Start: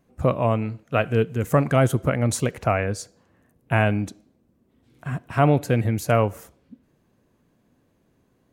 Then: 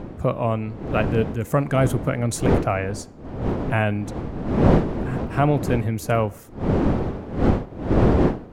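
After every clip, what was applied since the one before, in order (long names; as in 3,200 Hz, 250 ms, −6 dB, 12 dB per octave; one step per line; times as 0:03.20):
wind on the microphone 340 Hz −22 dBFS
level −1.5 dB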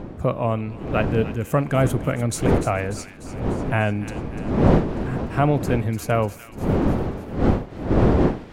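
delay with a high-pass on its return 296 ms, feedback 60%, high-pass 1,900 Hz, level −11 dB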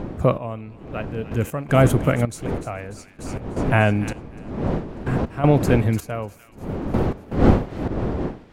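gate pattern "xx.....x.x" 80 BPM −12 dB
level +4 dB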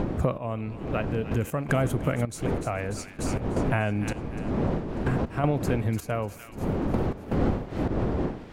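downward compressor 4 to 1, threshold −29 dBFS, peak gain reduction 17.5 dB
level +5 dB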